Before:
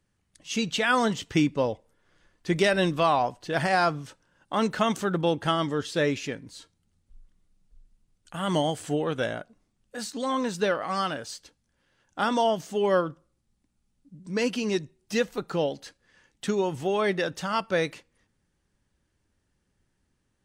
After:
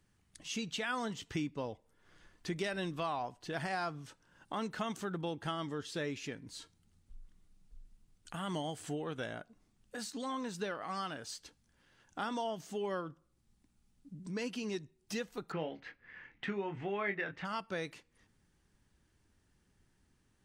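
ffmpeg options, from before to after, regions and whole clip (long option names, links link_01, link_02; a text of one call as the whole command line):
ffmpeg -i in.wav -filter_complex "[0:a]asettb=1/sr,asplit=3[link_01][link_02][link_03];[link_01]atrim=end=15.524[link_04];[link_02]atrim=start=15.52:end=17.45,asetpts=PTS-STARTPTS,afade=type=in:duration=0.004:curve=qsin,afade=type=out:start_time=1.926:duration=0.004:curve=qsin,lowpass=frequency=2100:width_type=q:width=3.4,asplit=2[link_05][link_06];[link_06]adelay=25,volume=-7dB[link_07];[link_05][link_07]amix=inputs=2:normalize=0,atrim=end_sample=85113[link_08];[link_03]atrim=start=17.446[link_09];[link_04][link_08]acrossfade=duration=0.004:curve1=hsin:curve2=qsin[link_10];[link_10][link_09]acrossfade=duration=0.004:curve1=qsin:curve2=hsin,equalizer=frequency=550:width_type=o:width=0.3:gain=-5,acompressor=threshold=-48dB:ratio=2,volume=1.5dB" out.wav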